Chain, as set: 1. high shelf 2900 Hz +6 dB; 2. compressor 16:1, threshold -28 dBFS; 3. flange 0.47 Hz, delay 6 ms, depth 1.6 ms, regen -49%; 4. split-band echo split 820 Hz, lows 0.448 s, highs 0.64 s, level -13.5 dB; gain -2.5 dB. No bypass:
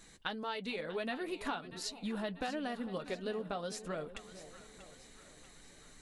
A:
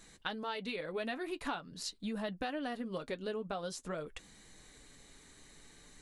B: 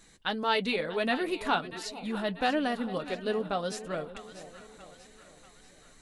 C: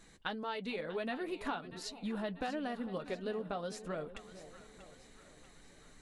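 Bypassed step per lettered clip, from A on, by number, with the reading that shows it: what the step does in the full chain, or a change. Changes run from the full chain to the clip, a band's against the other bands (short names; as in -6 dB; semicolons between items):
4, echo-to-direct -12.0 dB to none; 2, mean gain reduction 4.5 dB; 1, 8 kHz band -5.0 dB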